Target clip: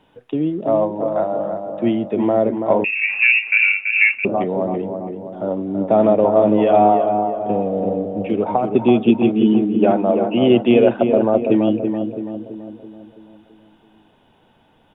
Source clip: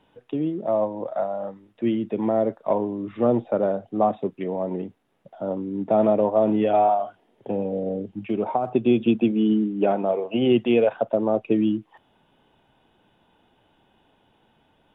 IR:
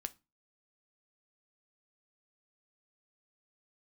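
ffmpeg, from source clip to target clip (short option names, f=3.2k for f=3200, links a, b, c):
-filter_complex "[0:a]asplit=2[a][b];[b]adelay=332,lowpass=f=1.5k:p=1,volume=-5.5dB,asplit=2[c][d];[d]adelay=332,lowpass=f=1.5k:p=1,volume=0.53,asplit=2[e][f];[f]adelay=332,lowpass=f=1.5k:p=1,volume=0.53,asplit=2[g][h];[h]adelay=332,lowpass=f=1.5k:p=1,volume=0.53,asplit=2[i][j];[j]adelay=332,lowpass=f=1.5k:p=1,volume=0.53,asplit=2[k][l];[l]adelay=332,lowpass=f=1.5k:p=1,volume=0.53,asplit=2[m][n];[n]adelay=332,lowpass=f=1.5k:p=1,volume=0.53[o];[a][c][e][g][i][k][m][o]amix=inputs=8:normalize=0,asettb=1/sr,asplit=3[p][q][r];[p]atrim=end=2.844[s];[q]atrim=start=2.84:end=4.25,asetpts=PTS-STARTPTS,afade=t=in:d=0.004:c=qsin,afade=t=out:st=1.406:d=0.004:c=qsin,lowpass=f=2.5k:t=q:w=0.5098,lowpass=f=2.5k:t=q:w=0.6013,lowpass=f=2.5k:t=q:w=0.9,lowpass=f=2.5k:t=q:w=2.563,afreqshift=-2900[t];[r]atrim=start=4.246[u];[s][t]acrossfade=d=0.004:c1=hsin:c2=qsin[v];[v][u]acrossfade=d=0.004:c1=qsin:c2=hsin,asplit=2[w][x];[1:a]atrim=start_sample=2205[y];[x][y]afir=irnorm=-1:irlink=0,volume=-8.5dB[z];[w][z]amix=inputs=2:normalize=0,volume=3dB"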